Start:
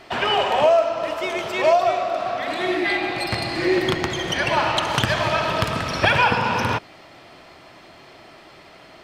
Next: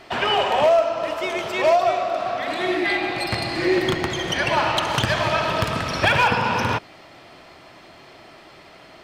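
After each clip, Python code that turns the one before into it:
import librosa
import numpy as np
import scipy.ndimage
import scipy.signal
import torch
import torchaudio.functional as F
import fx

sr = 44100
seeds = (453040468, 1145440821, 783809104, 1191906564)

y = np.clip(x, -10.0 ** (-11.0 / 20.0), 10.0 ** (-11.0 / 20.0))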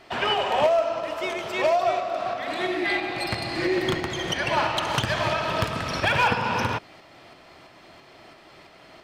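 y = fx.tremolo_shape(x, sr, shape='saw_up', hz=3.0, depth_pct=35)
y = F.gain(torch.from_numpy(y), -2.0).numpy()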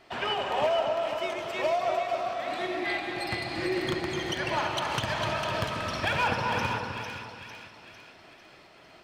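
y = fx.echo_split(x, sr, split_hz=1700.0, low_ms=254, high_ms=451, feedback_pct=52, wet_db=-5.5)
y = F.gain(torch.from_numpy(y), -6.0).numpy()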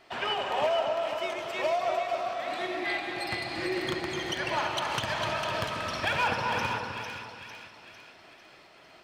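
y = fx.low_shelf(x, sr, hz=330.0, db=-5.0)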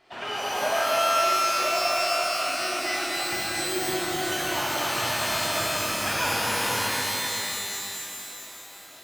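y = fx.rev_shimmer(x, sr, seeds[0], rt60_s=2.7, semitones=12, shimmer_db=-2, drr_db=-4.0)
y = F.gain(torch.from_numpy(y), -4.5).numpy()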